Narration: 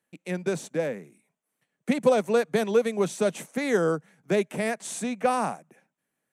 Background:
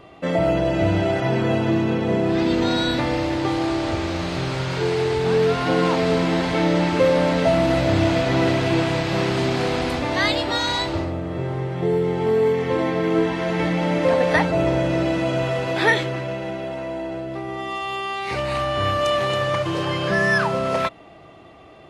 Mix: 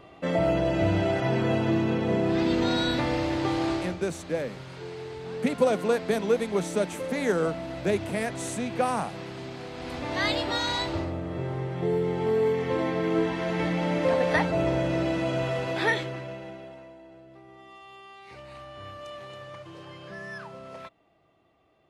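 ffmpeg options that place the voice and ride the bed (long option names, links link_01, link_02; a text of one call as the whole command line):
ffmpeg -i stem1.wav -i stem2.wav -filter_complex "[0:a]adelay=3550,volume=-2dB[link_01];[1:a]volume=7dB,afade=type=out:start_time=3.72:duration=0.24:silence=0.237137,afade=type=in:start_time=9.74:duration=0.57:silence=0.266073,afade=type=out:start_time=15.6:duration=1.37:silence=0.177828[link_02];[link_01][link_02]amix=inputs=2:normalize=0" out.wav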